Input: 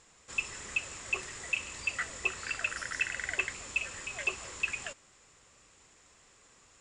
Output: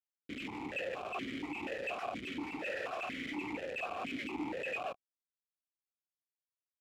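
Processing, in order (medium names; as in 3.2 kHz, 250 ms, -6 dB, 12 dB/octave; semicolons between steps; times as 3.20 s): Schmitt trigger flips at -40.5 dBFS; bit crusher 8-bit; stepped vowel filter 4.2 Hz; trim +10.5 dB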